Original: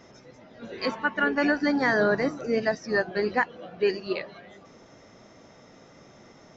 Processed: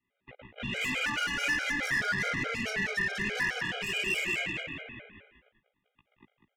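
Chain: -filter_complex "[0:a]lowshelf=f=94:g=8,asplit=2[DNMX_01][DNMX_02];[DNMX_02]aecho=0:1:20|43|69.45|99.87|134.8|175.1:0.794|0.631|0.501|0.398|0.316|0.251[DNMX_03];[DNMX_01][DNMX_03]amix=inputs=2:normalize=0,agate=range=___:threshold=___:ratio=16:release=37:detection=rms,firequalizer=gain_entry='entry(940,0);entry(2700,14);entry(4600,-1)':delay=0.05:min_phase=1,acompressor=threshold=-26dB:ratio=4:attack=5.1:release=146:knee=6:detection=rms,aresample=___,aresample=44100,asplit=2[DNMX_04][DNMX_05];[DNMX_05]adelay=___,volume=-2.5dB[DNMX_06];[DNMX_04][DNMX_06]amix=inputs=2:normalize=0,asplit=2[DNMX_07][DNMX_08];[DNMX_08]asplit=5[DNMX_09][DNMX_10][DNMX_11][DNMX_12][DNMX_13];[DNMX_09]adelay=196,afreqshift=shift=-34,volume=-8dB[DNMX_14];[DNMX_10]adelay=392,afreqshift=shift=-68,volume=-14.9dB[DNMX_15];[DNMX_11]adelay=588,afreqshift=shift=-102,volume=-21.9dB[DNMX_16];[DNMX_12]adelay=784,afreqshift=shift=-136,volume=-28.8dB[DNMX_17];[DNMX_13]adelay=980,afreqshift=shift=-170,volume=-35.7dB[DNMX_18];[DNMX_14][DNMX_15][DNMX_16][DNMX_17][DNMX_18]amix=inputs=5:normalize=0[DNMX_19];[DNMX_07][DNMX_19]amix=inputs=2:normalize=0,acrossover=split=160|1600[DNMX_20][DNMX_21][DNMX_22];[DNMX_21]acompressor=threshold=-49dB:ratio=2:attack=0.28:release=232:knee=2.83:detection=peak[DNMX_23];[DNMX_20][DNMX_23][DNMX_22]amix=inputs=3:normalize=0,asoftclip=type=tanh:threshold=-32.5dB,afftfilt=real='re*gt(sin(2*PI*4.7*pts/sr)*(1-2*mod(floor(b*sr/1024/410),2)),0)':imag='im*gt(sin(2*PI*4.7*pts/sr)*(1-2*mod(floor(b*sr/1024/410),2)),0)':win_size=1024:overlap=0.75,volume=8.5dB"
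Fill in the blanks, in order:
-44dB, -43dB, 8000, 16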